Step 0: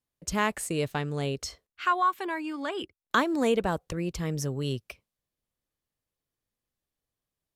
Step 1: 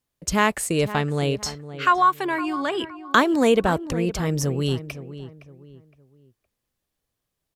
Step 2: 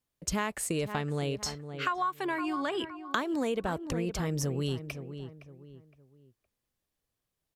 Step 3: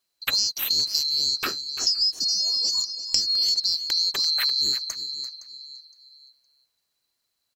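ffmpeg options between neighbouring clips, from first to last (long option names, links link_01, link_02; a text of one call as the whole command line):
ffmpeg -i in.wav -filter_complex "[0:a]asplit=2[link_01][link_02];[link_02]adelay=514,lowpass=frequency=1900:poles=1,volume=-13dB,asplit=2[link_03][link_04];[link_04]adelay=514,lowpass=frequency=1900:poles=1,volume=0.34,asplit=2[link_05][link_06];[link_06]adelay=514,lowpass=frequency=1900:poles=1,volume=0.34[link_07];[link_01][link_03][link_05][link_07]amix=inputs=4:normalize=0,volume=7dB" out.wav
ffmpeg -i in.wav -af "acompressor=threshold=-23dB:ratio=6,volume=-4.5dB" out.wav
ffmpeg -i in.wav -af "afftfilt=real='real(if(lt(b,736),b+184*(1-2*mod(floor(b/184),2)),b),0)':imag='imag(if(lt(b,736),b+184*(1-2*mod(floor(b/184),2)),b),0)':win_size=2048:overlap=0.75,aecho=1:1:342:0.2,volume=7.5dB" out.wav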